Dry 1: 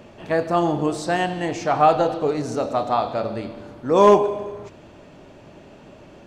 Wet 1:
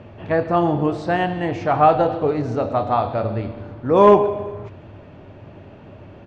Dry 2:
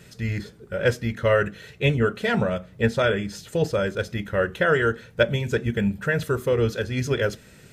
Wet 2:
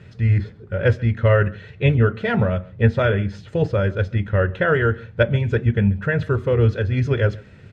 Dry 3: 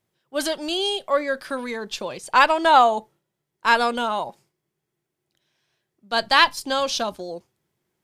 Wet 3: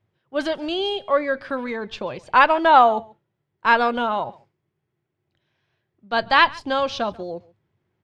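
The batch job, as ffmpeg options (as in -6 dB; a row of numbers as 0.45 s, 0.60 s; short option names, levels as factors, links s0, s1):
-af "lowpass=2800,equalizer=f=96:t=o:w=0.69:g=13,aecho=1:1:138:0.0668,volume=1.19"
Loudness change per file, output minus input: +1.5 LU, +4.0 LU, +1.0 LU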